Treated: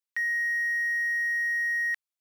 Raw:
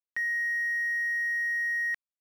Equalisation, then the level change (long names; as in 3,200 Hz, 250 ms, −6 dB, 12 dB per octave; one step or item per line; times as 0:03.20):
high-pass filter 1,400 Hz 6 dB per octave
+3.5 dB